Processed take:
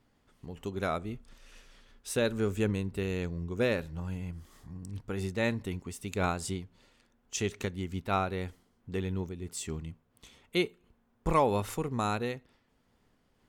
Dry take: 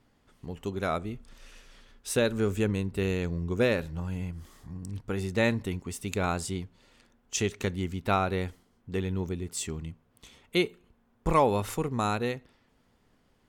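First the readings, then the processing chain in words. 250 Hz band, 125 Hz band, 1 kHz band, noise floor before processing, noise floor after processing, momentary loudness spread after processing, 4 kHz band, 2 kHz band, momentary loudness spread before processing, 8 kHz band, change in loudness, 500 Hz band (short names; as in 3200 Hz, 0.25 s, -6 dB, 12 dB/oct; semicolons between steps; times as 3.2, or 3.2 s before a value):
-3.0 dB, -3.0 dB, -2.5 dB, -68 dBFS, -71 dBFS, 13 LU, -3.5 dB, -3.0 dB, 13 LU, -4.0 dB, -3.0 dB, -3.0 dB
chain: noise-modulated level, depth 60%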